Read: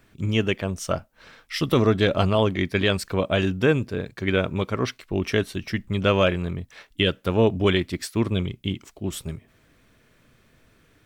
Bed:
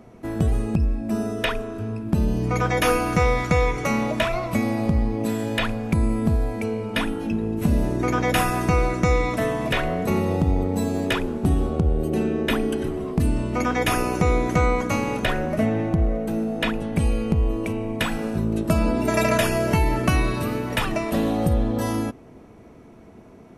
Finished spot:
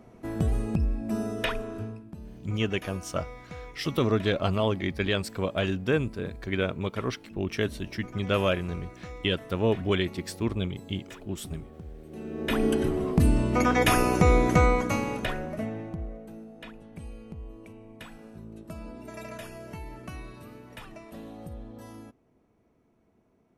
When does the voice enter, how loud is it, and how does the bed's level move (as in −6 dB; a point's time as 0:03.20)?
2.25 s, −5.5 dB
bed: 0:01.82 −5 dB
0:02.16 −22.5 dB
0:12.05 −22.5 dB
0:12.65 0 dB
0:14.54 0 dB
0:16.53 −20.5 dB